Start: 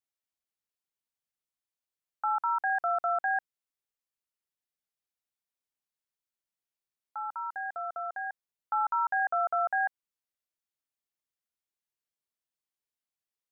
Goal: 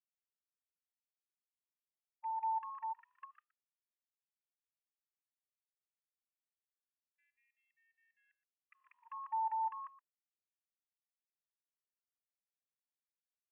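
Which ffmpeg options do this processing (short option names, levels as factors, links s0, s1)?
-filter_complex "[0:a]agate=range=0.0562:threshold=0.0224:ratio=16:detection=peak,equalizer=f=1400:t=o:w=0.85:g=5.5,bandreject=f=1400:w=10,acrossover=split=680|840[s0][s1][s2];[s1]acontrast=40[s3];[s0][s3][s2]amix=inputs=3:normalize=0,aresample=11025,aresample=44100,asetrate=29433,aresample=44100,atempo=1.49831,asplit=3[s4][s5][s6];[s4]bandpass=f=530:t=q:w=8,volume=1[s7];[s5]bandpass=f=1840:t=q:w=8,volume=0.501[s8];[s6]bandpass=f=2480:t=q:w=8,volume=0.355[s9];[s7][s8][s9]amix=inputs=3:normalize=0,asplit=2[s10][s11];[s11]aecho=0:1:120:0.158[s12];[s10][s12]amix=inputs=2:normalize=0,afftfilt=real='re*gte(b*sr/1024,840*pow(1800/840,0.5+0.5*sin(2*PI*0.29*pts/sr)))':imag='im*gte(b*sr/1024,840*pow(1800/840,0.5+0.5*sin(2*PI*0.29*pts/sr)))':win_size=1024:overlap=0.75,volume=7.5"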